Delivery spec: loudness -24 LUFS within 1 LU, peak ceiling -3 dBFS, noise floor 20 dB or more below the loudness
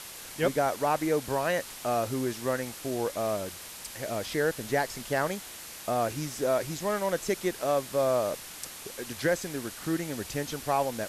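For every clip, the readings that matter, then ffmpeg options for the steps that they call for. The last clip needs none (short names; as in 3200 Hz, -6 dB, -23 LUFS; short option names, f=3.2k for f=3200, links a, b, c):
noise floor -44 dBFS; noise floor target -51 dBFS; loudness -30.5 LUFS; peak -14.5 dBFS; loudness target -24.0 LUFS
-> -af "afftdn=nr=7:nf=-44"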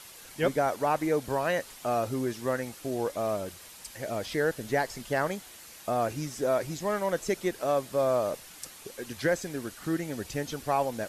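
noise floor -49 dBFS; noise floor target -51 dBFS
-> -af "afftdn=nr=6:nf=-49"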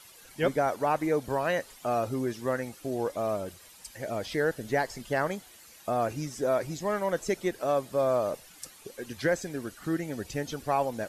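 noise floor -53 dBFS; loudness -30.5 LUFS; peak -14.5 dBFS; loudness target -24.0 LUFS
-> -af "volume=6.5dB"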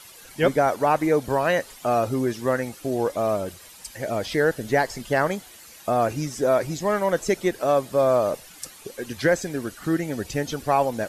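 loudness -24.0 LUFS; peak -8.0 dBFS; noise floor -47 dBFS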